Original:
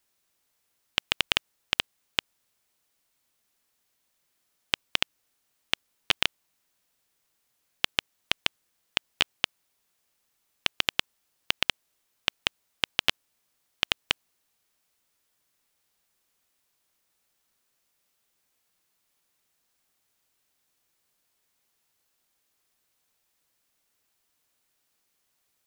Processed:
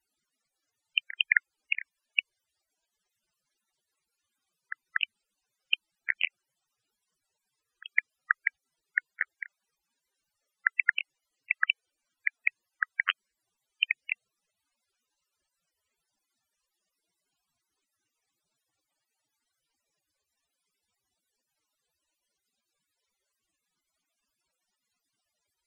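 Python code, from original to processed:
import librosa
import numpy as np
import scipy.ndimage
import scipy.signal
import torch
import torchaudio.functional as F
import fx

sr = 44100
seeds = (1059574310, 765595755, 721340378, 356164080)

y = fx.pitch_ramps(x, sr, semitones=-11.5, every_ms=238)
y = fx.spec_topn(y, sr, count=32)
y = F.gain(torch.from_numpy(y), 3.0).numpy()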